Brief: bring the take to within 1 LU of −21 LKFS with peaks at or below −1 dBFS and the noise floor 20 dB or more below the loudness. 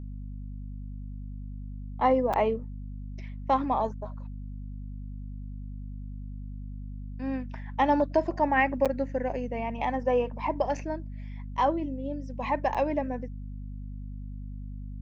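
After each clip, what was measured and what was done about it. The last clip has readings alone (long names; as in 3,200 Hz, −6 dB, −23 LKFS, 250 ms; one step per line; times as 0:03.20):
number of dropouts 3; longest dropout 6.7 ms; mains hum 50 Hz; hum harmonics up to 250 Hz; level of the hum −35 dBFS; integrated loudness −28.5 LKFS; sample peak −12.0 dBFS; target loudness −21.0 LKFS
→ repair the gap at 0:02.33/0:08.85/0:12.74, 6.7 ms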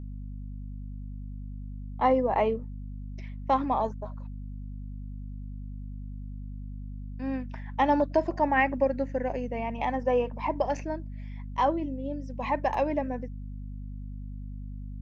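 number of dropouts 0; mains hum 50 Hz; hum harmonics up to 250 Hz; level of the hum −35 dBFS
→ hum removal 50 Hz, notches 5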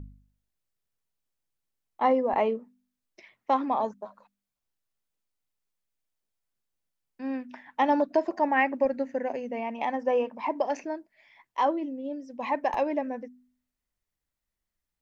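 mains hum none found; integrated loudness −28.5 LKFS; sample peak −12.0 dBFS; target loudness −21.0 LKFS
→ level +7.5 dB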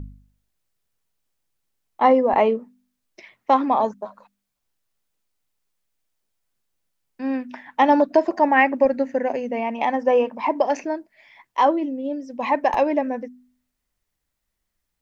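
integrated loudness −21.0 LKFS; sample peak −4.5 dBFS; background noise floor −79 dBFS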